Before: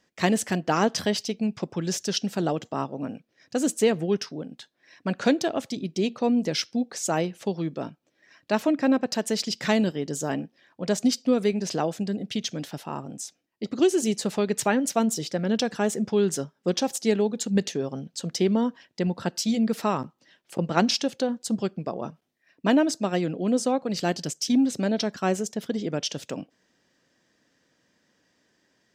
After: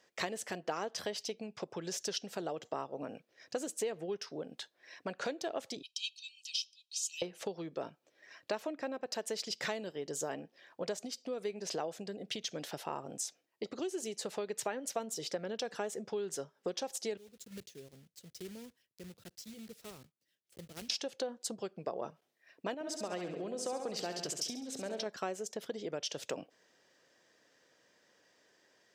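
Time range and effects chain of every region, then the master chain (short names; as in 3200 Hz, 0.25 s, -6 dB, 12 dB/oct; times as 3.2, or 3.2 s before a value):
5.82–7.22 steep high-pass 2700 Hz 72 dB/oct + high shelf 9400 Hz -12 dB + comb 1.6 ms, depth 78%
17.17–20.9 block floating point 3-bit + passive tone stack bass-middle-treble 10-0-1
22.74–25.06 compressor 2.5:1, threshold -27 dBFS + feedback echo 68 ms, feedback 54%, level -7.5 dB
whole clip: compressor 10:1, threshold -33 dBFS; HPF 79 Hz; resonant low shelf 330 Hz -7.5 dB, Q 1.5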